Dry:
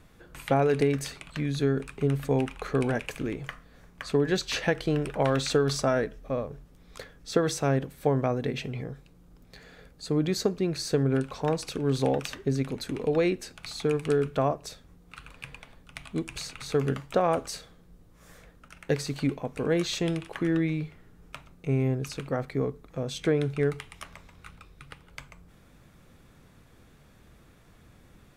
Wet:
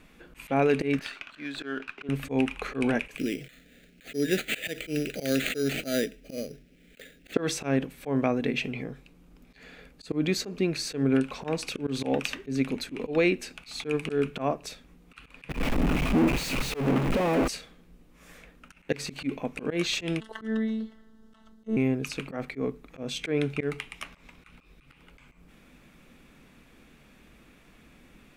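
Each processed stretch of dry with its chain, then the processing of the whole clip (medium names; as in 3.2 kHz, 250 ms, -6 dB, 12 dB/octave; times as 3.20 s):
0.99–2.09 s: cabinet simulation 430–4500 Hz, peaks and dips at 470 Hz -9 dB, 850 Hz -3 dB, 1.5 kHz +8 dB, 2.2 kHz -5 dB + sliding maximum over 3 samples
3.17–7.34 s: bass shelf 80 Hz -10.5 dB + sample-rate reducer 5.4 kHz + Butterworth band-stop 990 Hz, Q 1
15.49–17.48 s: one-bit comparator + tilt shelf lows +8.5 dB, about 1.4 kHz + three bands expanded up and down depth 100%
20.20–21.77 s: treble shelf 8.5 kHz -7.5 dB + robot voice 221 Hz + Butterworth band-stop 2.4 kHz, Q 2.1
whole clip: fifteen-band graphic EQ 100 Hz -12 dB, 250 Hz +6 dB, 2.5 kHz +9 dB; slow attack 110 ms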